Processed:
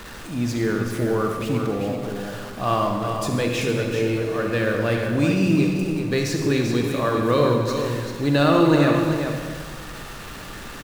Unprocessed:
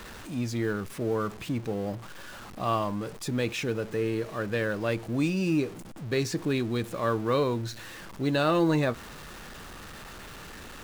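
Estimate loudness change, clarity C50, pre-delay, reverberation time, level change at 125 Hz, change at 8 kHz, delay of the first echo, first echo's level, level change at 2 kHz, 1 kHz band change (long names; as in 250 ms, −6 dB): +7.0 dB, 1.0 dB, 39 ms, 1.5 s, +8.5 dB, +7.0 dB, 389 ms, −7.0 dB, +7.0 dB, +7.5 dB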